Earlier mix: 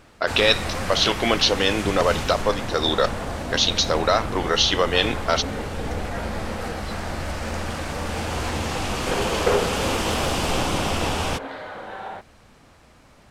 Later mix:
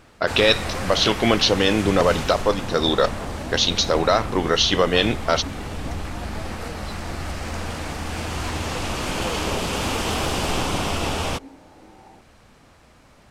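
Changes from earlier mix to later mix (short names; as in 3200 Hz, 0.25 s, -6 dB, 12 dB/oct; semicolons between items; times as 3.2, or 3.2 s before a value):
speech: remove HPF 420 Hz 6 dB/oct; second sound: add vocal tract filter u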